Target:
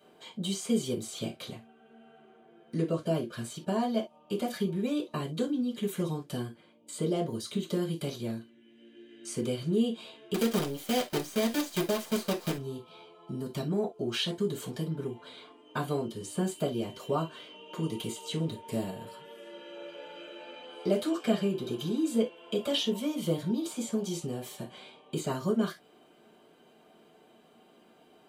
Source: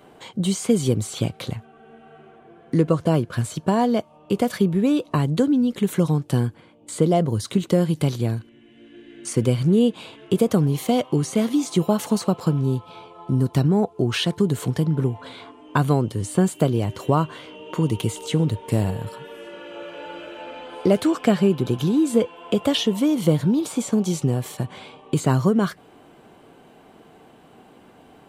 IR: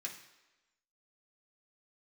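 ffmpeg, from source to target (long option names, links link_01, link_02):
-filter_complex "[0:a]asettb=1/sr,asplit=3[link_01][link_02][link_03];[link_01]atrim=end=10.344[link_04];[link_02]atrim=start=10.34:end=12.58,asetpts=PTS-STARTPTS,afade=type=in:duration=0.004:curve=qsin,afade=type=out:start_time=2.236:duration=0.004:curve=qsin,acrusher=bits=4:dc=4:mix=0:aa=0.000001[link_05];[link_03]atrim=start=12.576[link_06];[link_04][link_05]acrossfade=duration=0.004:curve1=hsin:curve2=qsin[link_07];[link_07][link_06]acrossfade=duration=0.004:curve1=qsin:curve2=hsin[link_08];[1:a]atrim=start_sample=2205,atrim=end_sample=6174,asetrate=83790,aresample=44100[link_09];[link_08][link_09]afir=irnorm=-1:irlink=0"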